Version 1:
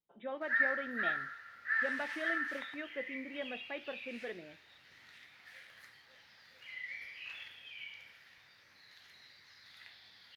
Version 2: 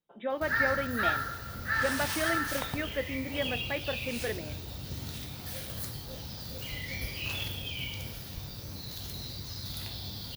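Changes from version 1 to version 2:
speech +8.5 dB; background: remove band-pass 1900 Hz, Q 4.2

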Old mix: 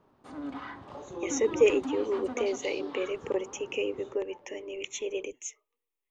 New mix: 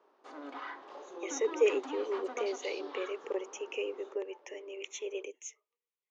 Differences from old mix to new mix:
speech -4.5 dB; master: add Chebyshev band-pass 380–6500 Hz, order 3

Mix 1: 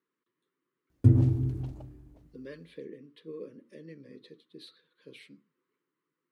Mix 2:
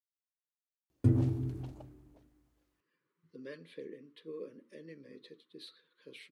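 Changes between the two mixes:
speech: entry +1.00 s; master: add low shelf 210 Hz -9.5 dB

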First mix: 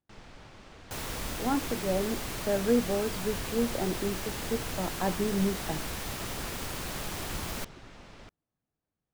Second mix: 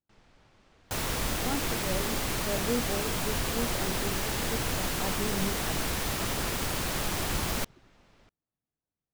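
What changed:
speech -6.0 dB; first sound -11.0 dB; second sound +5.5 dB

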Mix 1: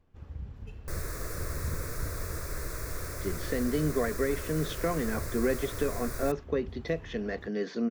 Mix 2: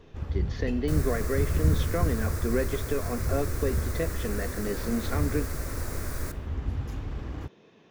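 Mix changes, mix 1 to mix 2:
speech: entry -2.90 s; first sound +12.0 dB; second sound: send on

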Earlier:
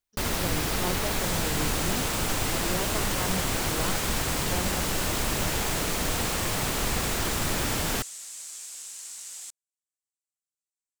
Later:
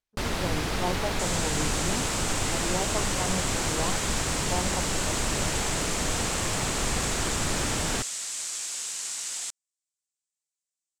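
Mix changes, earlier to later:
speech: add synth low-pass 900 Hz, resonance Q 1.8; second sound +11.5 dB; master: add air absorption 50 m

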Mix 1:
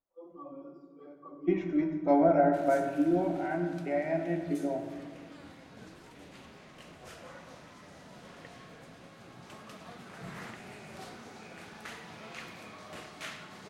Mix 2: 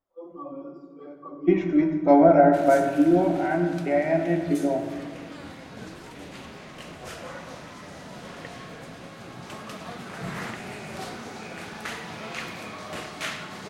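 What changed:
speech +8.0 dB; background +10.0 dB

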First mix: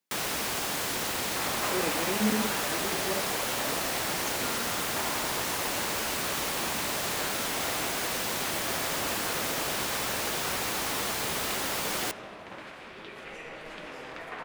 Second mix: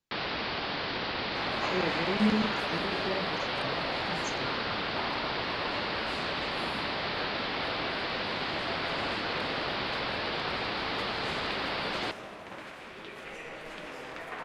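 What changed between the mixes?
speech: remove HPF 190 Hz 24 dB/oct; first sound: add steep low-pass 4800 Hz 72 dB/oct

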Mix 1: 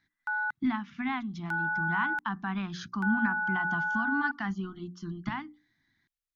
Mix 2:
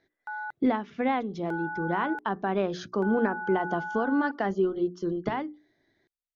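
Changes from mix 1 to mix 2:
background -7.0 dB; master: remove Chebyshev band-stop 220–1100 Hz, order 2

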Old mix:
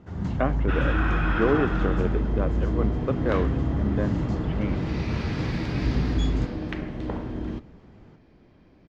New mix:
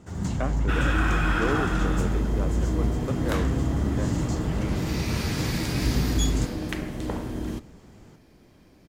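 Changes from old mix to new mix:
speech -6.5 dB; master: remove air absorption 230 m

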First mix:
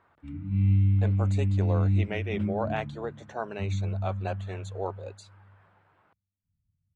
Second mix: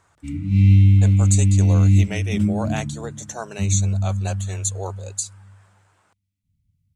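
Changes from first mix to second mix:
background +9.5 dB; master: remove air absorption 420 m

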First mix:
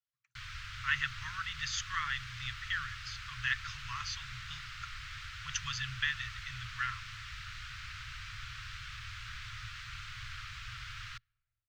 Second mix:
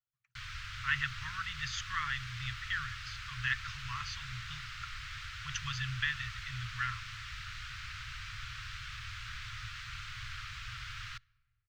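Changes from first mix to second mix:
speech: add tone controls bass +6 dB, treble -6 dB; background: send +10.5 dB

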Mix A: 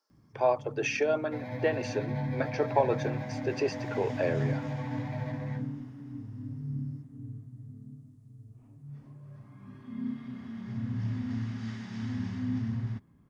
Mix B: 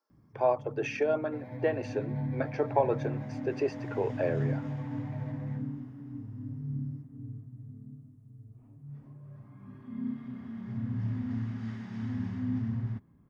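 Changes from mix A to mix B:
second sound -6.0 dB; master: add bell 5600 Hz -10 dB 2.3 oct

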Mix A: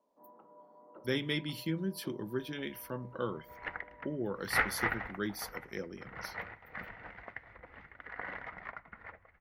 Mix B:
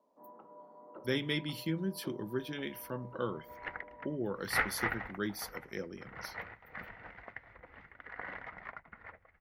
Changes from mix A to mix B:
first sound +5.5 dB; reverb: off

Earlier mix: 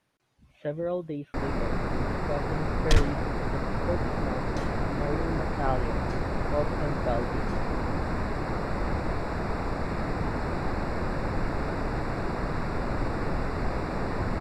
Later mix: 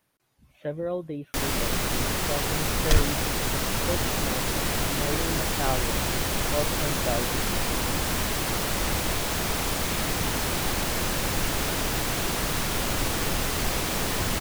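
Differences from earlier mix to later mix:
first sound: remove running mean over 14 samples; master: remove air absorption 53 m

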